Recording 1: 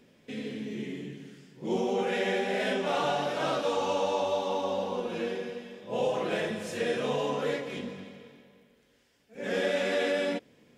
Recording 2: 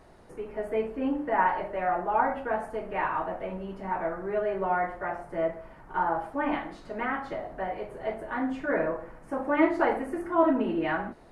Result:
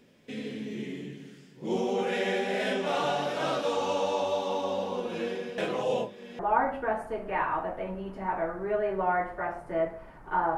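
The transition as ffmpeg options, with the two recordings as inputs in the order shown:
-filter_complex "[0:a]apad=whole_dur=10.57,atrim=end=10.57,asplit=2[a][b];[a]atrim=end=5.582[c];[b]atrim=start=5.578:end=6.392,asetpts=PTS-STARTPTS,areverse[d];[1:a]atrim=start=2.018:end=6.2[e];[c][d]acrossfade=d=0.004:c1=hsin:c2=hsin[f];[f][e]acrossfade=d=0.004:c1=hsin:c2=hsin"

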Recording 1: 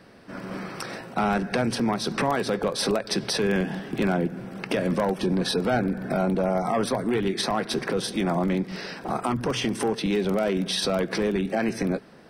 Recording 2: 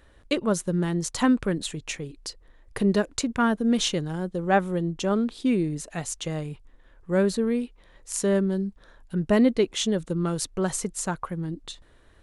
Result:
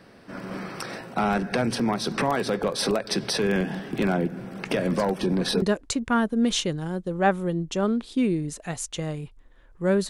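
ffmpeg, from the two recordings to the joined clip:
-filter_complex "[1:a]asplit=2[a][b];[0:a]apad=whole_dur=10.09,atrim=end=10.09,atrim=end=5.622[c];[b]atrim=start=2.898:end=7.37[d];[a]atrim=start=1.93:end=2.9,asetpts=PTS-STARTPTS,volume=-8dB,afade=t=in:d=0.004:c=hsin,afade=t=out:st=0.966:d=0.004:c=hsin,adelay=205065S[e];[c][d]acrossfade=d=0.004:c1=hsin:c2=hsin[f];[f][e]amix=inputs=2:normalize=0"

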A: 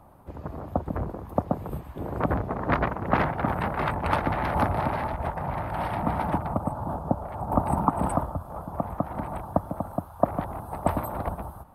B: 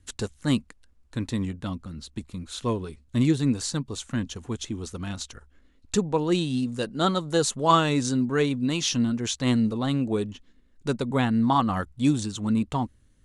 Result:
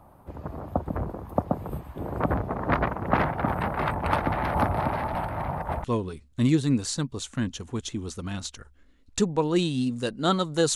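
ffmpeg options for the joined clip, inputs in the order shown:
-filter_complex "[0:a]apad=whole_dur=10.75,atrim=end=10.75,asplit=2[a][b];[a]atrim=end=5.152[c];[b]atrim=start=5.148:end=5.842,asetpts=PTS-STARTPTS,areverse[d];[1:a]atrim=start=2.598:end=7.51[e];[c][d]acrossfade=d=0.004:c1=hsin:c2=hsin[f];[f][e]acrossfade=d=0.004:c1=hsin:c2=hsin"

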